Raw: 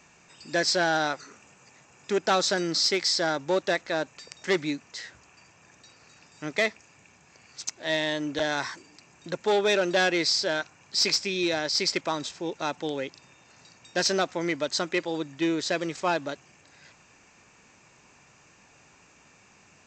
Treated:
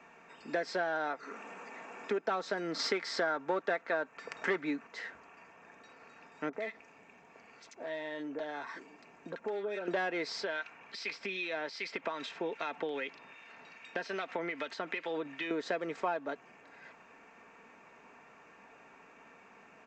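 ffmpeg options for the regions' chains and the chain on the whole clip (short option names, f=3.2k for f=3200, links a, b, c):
-filter_complex "[0:a]asettb=1/sr,asplit=3[a][b][c];[a]atrim=end=1.234[d];[b]atrim=start=1.23:end=2.24,asetpts=PTS-STARTPTS,afade=t=in:d=0.004:c=qsin,afade=t=out:st=1.006:d=0.004:c=qsin,highpass=f=180:w=0.5412,highpass=f=180:w=1.3066,acompressor=mode=upward:threshold=-37dB:ratio=2.5:attack=3.2:release=140:knee=2.83:detection=peak[e];[c]atrim=start=2.236[f];[d][e]acrossfade=d=0.004:c1=hsin:c2=qsin[g];[g][f]acrossfade=d=0.004:c1=qsin:c2=hsin,asettb=1/sr,asplit=3[h][i][j];[h]atrim=end=2.794[k];[i]atrim=start=2.79:end=4.87,asetpts=PTS-STARTPTS,afade=t=in:d=0.004:c=qsin,afade=t=out:st=2.076:d=0.004:c=qsin,equalizer=f=1.4k:w=2.1:g=4.5,acontrast=41[l];[j]atrim=start=4.866[m];[k][l]acrossfade=d=0.004:c1=hsin:c2=qsin[n];[n][m]acrossfade=d=0.004:c1=qsin:c2=hsin,asettb=1/sr,asplit=3[o][p][q];[o]atrim=end=6.494[r];[p]atrim=start=6.49:end=9.88,asetpts=PTS-STARTPTS,afade=t=in:d=0.004:c=qsin,afade=t=out:st=3.386:d=0.004:c=qsin,acompressor=threshold=-40dB:ratio=3:attack=3.2:release=140:knee=1:detection=peak,acrossover=split=1400[s][t];[t]adelay=40[u];[s][u]amix=inputs=2:normalize=0,atrim=end_sample=149499[v];[q]atrim=start=9.876[w];[r][v]acrossfade=d=0.004:c1=hsin:c2=qsin[x];[x][w]acrossfade=d=0.004:c1=qsin:c2=hsin,asettb=1/sr,asplit=3[y][z][aa];[y]atrim=end=10.424[ab];[z]atrim=start=10.42:end=15.51,asetpts=PTS-STARTPTS,afade=t=in:d=0.004:c=qsin,afade=t=out:st=5.086:d=0.004:c=qsin,equalizer=f=2.8k:t=o:w=1.7:g=10,acompressor=threshold=-28dB:ratio=8:attack=3.2:release=140:knee=1:detection=peak,acrossover=split=1400[ac][ad];[ac]aeval=exprs='val(0)*(1-0.5/2+0.5/2*cos(2*PI*2.5*n/s))':c=same[ae];[ad]aeval=exprs='val(0)*(1-0.5/2-0.5/2*cos(2*PI*2.5*n/s))':c=same[af];[ae][af]amix=inputs=2:normalize=0[ag];[aa]atrim=start=15.506[ah];[ab][ag]acrossfade=d=0.004:c1=hsin:c2=qsin[ai];[ai][ah]acrossfade=d=0.004:c1=qsin:c2=hsin,acrossover=split=240 2400:gain=0.178 1 0.0891[aj][ak][al];[aj][ak][al]amix=inputs=3:normalize=0,aecho=1:1:4.4:0.39,acompressor=threshold=-35dB:ratio=4,volume=3dB"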